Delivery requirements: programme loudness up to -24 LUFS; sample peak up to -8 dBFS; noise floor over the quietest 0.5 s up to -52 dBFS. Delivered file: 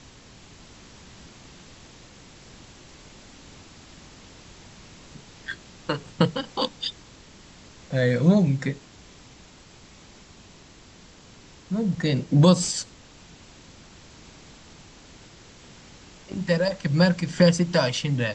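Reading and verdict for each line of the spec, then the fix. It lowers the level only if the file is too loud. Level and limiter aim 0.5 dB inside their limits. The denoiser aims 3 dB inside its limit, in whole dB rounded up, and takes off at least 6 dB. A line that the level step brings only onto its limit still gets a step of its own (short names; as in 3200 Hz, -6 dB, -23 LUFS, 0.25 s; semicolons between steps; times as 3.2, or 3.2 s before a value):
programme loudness -23.5 LUFS: fail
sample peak -5.5 dBFS: fail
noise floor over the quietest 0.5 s -50 dBFS: fail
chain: denoiser 6 dB, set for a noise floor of -50 dBFS; gain -1 dB; limiter -8.5 dBFS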